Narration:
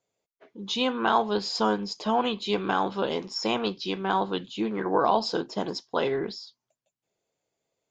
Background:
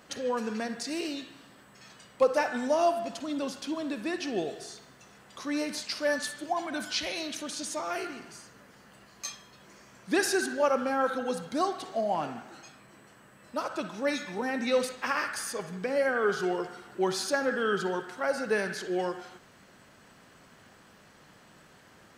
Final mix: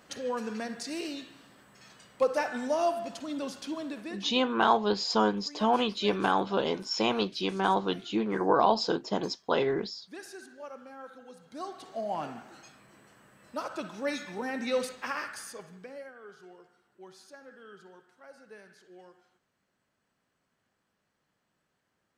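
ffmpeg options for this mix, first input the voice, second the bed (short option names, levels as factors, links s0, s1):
-filter_complex "[0:a]adelay=3550,volume=0.944[s0];[1:a]volume=4.47,afade=t=out:st=3.79:d=0.57:silence=0.158489,afade=t=in:st=11.39:d=0.86:silence=0.16788,afade=t=out:st=14.86:d=1.27:silence=0.105925[s1];[s0][s1]amix=inputs=2:normalize=0"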